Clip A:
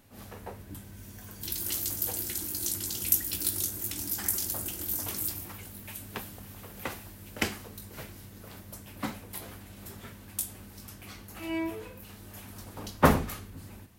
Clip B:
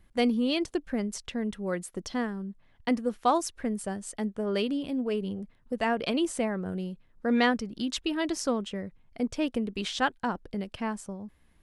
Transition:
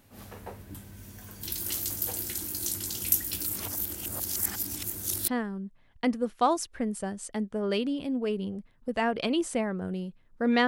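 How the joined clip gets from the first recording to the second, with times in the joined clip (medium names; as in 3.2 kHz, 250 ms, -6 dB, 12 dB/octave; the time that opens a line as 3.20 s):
clip A
3.46–5.28 s: reverse
5.28 s: go over to clip B from 2.12 s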